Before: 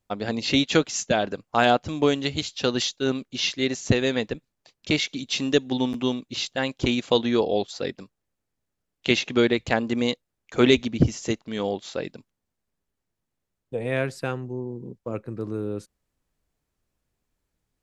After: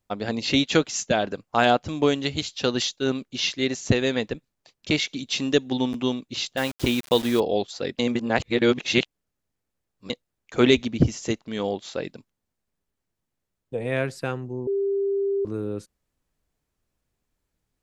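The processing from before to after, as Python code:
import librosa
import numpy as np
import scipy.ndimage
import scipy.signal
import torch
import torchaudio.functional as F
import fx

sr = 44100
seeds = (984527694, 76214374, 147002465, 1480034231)

y = fx.quant_dither(x, sr, seeds[0], bits=6, dither='none', at=(6.57, 7.4))
y = fx.edit(y, sr, fx.reverse_span(start_s=7.99, length_s=2.11),
    fx.bleep(start_s=14.67, length_s=0.78, hz=396.0, db=-21.0), tone=tone)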